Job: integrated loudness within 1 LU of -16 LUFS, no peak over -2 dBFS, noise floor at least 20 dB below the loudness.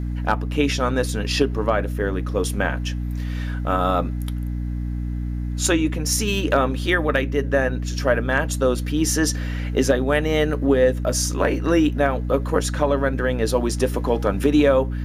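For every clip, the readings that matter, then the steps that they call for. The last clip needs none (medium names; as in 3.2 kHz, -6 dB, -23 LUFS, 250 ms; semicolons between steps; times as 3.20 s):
hum 60 Hz; highest harmonic 300 Hz; hum level -23 dBFS; loudness -21.5 LUFS; peak level -5.0 dBFS; loudness target -16.0 LUFS
-> hum notches 60/120/180/240/300 Hz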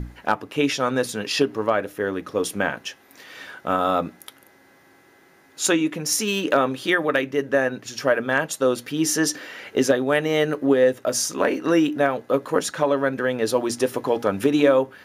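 hum not found; loudness -22.0 LUFS; peak level -4.5 dBFS; loudness target -16.0 LUFS
-> trim +6 dB; peak limiter -2 dBFS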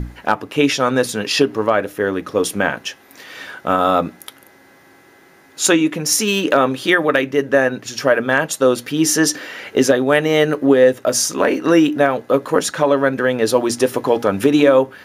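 loudness -16.5 LUFS; peak level -2.0 dBFS; noise floor -49 dBFS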